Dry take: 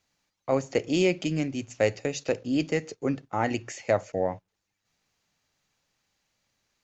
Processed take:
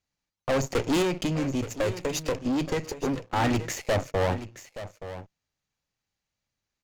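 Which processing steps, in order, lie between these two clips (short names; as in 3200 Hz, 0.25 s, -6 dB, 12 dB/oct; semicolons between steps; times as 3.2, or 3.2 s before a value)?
low shelf 120 Hz +9.5 dB; sample leveller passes 3; 1.02–3.36 compressor 4:1, threshold -20 dBFS, peak gain reduction 7 dB; tube stage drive 21 dB, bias 0.8; echo 0.875 s -13 dB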